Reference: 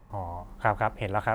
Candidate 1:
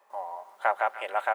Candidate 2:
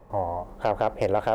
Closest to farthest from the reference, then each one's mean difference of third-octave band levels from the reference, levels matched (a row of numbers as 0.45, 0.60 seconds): 2, 1; 3.5, 8.5 decibels